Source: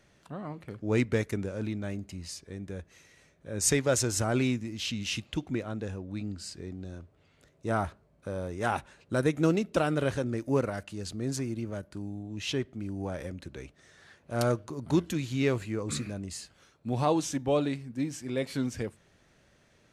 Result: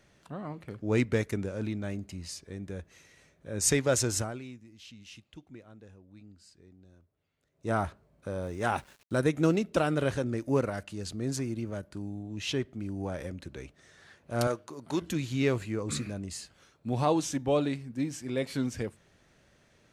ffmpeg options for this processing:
ffmpeg -i in.wav -filter_complex "[0:a]asettb=1/sr,asplit=3[link_01][link_02][link_03];[link_01]atrim=end=8.434[link_04];[link_02]atrim=start=8.43:end=9.17,asetpts=PTS-STARTPTS,afade=type=in:duration=0.004:curve=qsin,afade=type=out:start_time=0.736:duration=0.004:curve=qsin,aeval=exprs='val(0)*gte(abs(val(0)),0.00211)':channel_layout=same[link_05];[link_03]atrim=start=9.166[link_06];[link_04][link_05]acrossfade=duration=0.004:curve1=hsin:curve2=qsin[link_07];[link_07][link_06]acrossfade=duration=0.004:curve1=qsin:curve2=hsin,asettb=1/sr,asplit=3[link_08][link_09][link_10];[link_08]atrim=end=14.474[link_11];[link_09]atrim=start=14.47:end=15.02,asetpts=PTS-STARTPTS,afade=type=in:duration=0.004:curve=qsin,afade=type=out:start_time=0.546:duration=0.004:curve=qsin,highpass=frequency=480:poles=1[link_12];[link_10]atrim=start=15.016[link_13];[link_11][link_12]acrossfade=duration=0.004:curve1=hsin:curve2=qsin[link_14];[link_14][link_13]acrossfade=duration=0.004:curve1=qsin:curve2=hsin,asplit=3[link_15][link_16][link_17];[link_15]atrim=end=4.43,asetpts=PTS-STARTPTS,afade=type=out:start_time=4.17:duration=0.26:curve=qua:silence=0.149624[link_18];[link_16]atrim=start=4.43:end=7.43,asetpts=PTS-STARTPTS,volume=-16.5dB[link_19];[link_17]atrim=start=7.43,asetpts=PTS-STARTPTS,afade=type=in:duration=0.26:curve=qua:silence=0.149624[link_20];[link_18][link_19][link_20]concat=n=3:v=0:a=1" out.wav

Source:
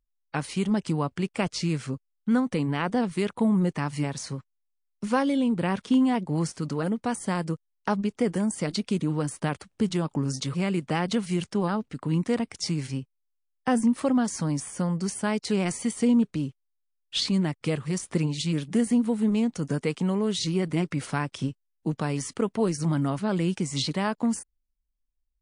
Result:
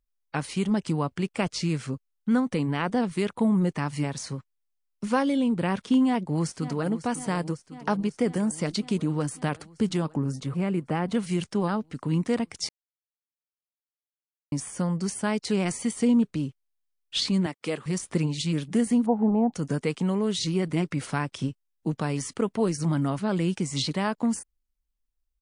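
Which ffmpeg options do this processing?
ffmpeg -i in.wav -filter_complex "[0:a]asplit=2[link_01][link_02];[link_02]afade=type=in:start_time=6.06:duration=0.01,afade=type=out:start_time=6.86:duration=0.01,aecho=0:1:550|1100|1650|2200|2750|3300|3850|4400|4950|5500|6050:0.211349|0.158512|0.118884|0.0891628|0.0668721|0.0501541|0.0376156|0.0282117|0.0211588|0.0158691|0.0119018[link_03];[link_01][link_03]amix=inputs=2:normalize=0,asettb=1/sr,asplit=3[link_04][link_05][link_06];[link_04]atrim=end=10.174[link_07];[link_05]atrim=start=10.17:end=11.15,asetpts=PTS-STARTPTS,afade=type=in:duration=0.004:curve=qsin,afade=type=out:start_time=0.976:duration=0.004:curve=qsin,equalizer=frequency=5300:width_type=o:width=2.2:gain=-12[link_08];[link_06]atrim=start=11.146[link_09];[link_07][link_08]acrossfade=duration=0.004:curve1=hsin:curve2=qsin[link_10];[link_10][link_09]acrossfade=duration=0.004:curve1=qsin:curve2=hsin,asettb=1/sr,asplit=3[link_11][link_12][link_13];[link_11]atrim=end=17.464[link_14];[link_12]atrim=start=17.46:end=17.86,asetpts=PTS-STARTPTS,afade=type=in:duration=0.004:curve=qsin,afade=type=out:start_time=0.396:duration=0.004:curve=qsin,highpass=280[link_15];[link_13]atrim=start=17.856[link_16];[link_14][link_15]acrossfade=duration=0.004:curve1=hsin:curve2=qsin[link_17];[link_17][link_16]acrossfade=duration=0.004:curve1=qsin:curve2=hsin,asplit=3[link_18][link_19][link_20];[link_18]afade=type=out:start_time=19.05:duration=0.02[link_21];[link_19]lowpass=frequency=790:width_type=q:width=8.7,afade=type=in:start_time=19.05:duration=0.02,afade=type=out:start_time=19.52:duration=0.02[link_22];[link_20]afade=type=in:start_time=19.52:duration=0.02[link_23];[link_21][link_22][link_23]amix=inputs=3:normalize=0,asplit=3[link_24][link_25][link_26];[link_24]atrim=end=12.69,asetpts=PTS-STARTPTS,afade=type=out:start_time=12.686:duration=0.004:curve=hsin[link_27];[link_25]atrim=start=12.69:end=14.52,asetpts=PTS-STARTPTS,volume=0[link_28];[link_26]atrim=start=14.52,asetpts=PTS-STARTPTS,afade=type=in:duration=0.004:curve=hsin[link_29];[link_27][link_28][link_29]concat=n=3:v=0:a=1" out.wav

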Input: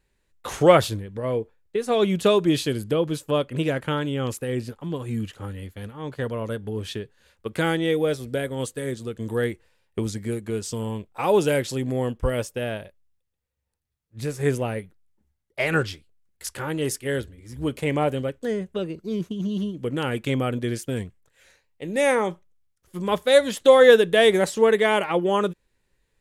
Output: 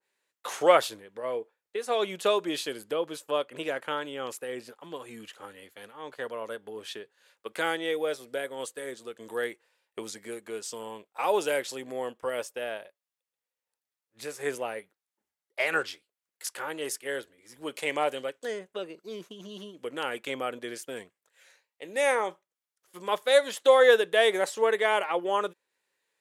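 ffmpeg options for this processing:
ffmpeg -i in.wav -filter_complex "[0:a]asettb=1/sr,asplit=3[link_01][link_02][link_03];[link_01]atrim=end=17.744[link_04];[link_02]atrim=start=17.74:end=18.59,asetpts=PTS-STARTPTS,afade=type=in:duration=0.004:curve=qsin,afade=type=out:start_time=0.846:duration=0.004:curve=qsin,equalizer=frequency=5500:width=0.42:gain=6[link_05];[link_03]atrim=start=18.586[link_06];[link_04][link_05]acrossfade=duration=0.004:curve1=hsin:curve2=qsin[link_07];[link_07][link_06]acrossfade=duration=0.004:curve1=qsin:curve2=hsin,highpass=550,adynamicequalizer=threshold=0.00447:dfrequency=1800:dqfactor=0.7:tfrequency=1800:tqfactor=0.7:attack=5:release=100:ratio=0.375:range=1.5:mode=cutabove:tftype=highshelf,volume=-2dB" out.wav

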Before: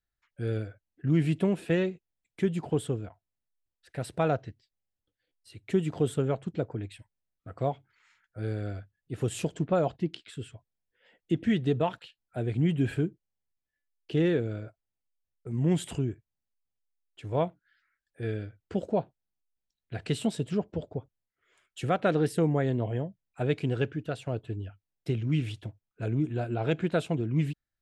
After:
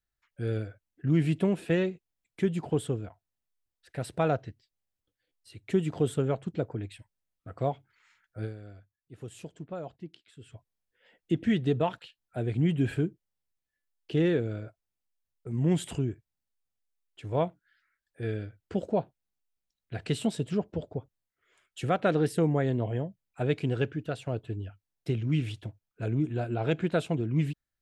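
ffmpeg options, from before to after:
ffmpeg -i in.wav -filter_complex "[0:a]asplit=3[link_01][link_02][link_03];[link_01]atrim=end=8.93,asetpts=PTS-STARTPTS,afade=type=out:start_time=8.44:duration=0.49:curve=exp:silence=0.237137[link_04];[link_02]atrim=start=8.93:end=10.04,asetpts=PTS-STARTPTS,volume=-12.5dB[link_05];[link_03]atrim=start=10.04,asetpts=PTS-STARTPTS,afade=type=in:duration=0.49:curve=exp:silence=0.237137[link_06];[link_04][link_05][link_06]concat=n=3:v=0:a=1" out.wav

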